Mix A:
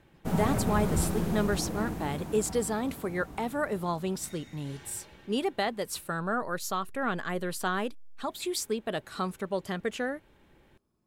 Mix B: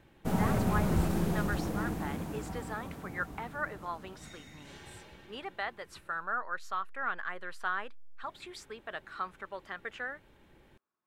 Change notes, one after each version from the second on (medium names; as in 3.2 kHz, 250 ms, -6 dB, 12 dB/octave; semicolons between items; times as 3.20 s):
speech: add band-pass filter 1.5 kHz, Q 1.6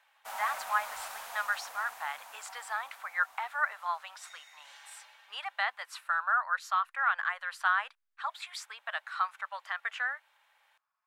speech +6.5 dB; master: add inverse Chebyshev high-pass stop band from 390 Hz, stop band 40 dB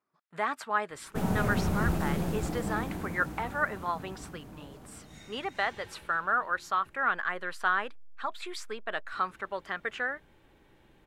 background: entry +0.90 s; master: remove inverse Chebyshev high-pass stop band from 390 Hz, stop band 40 dB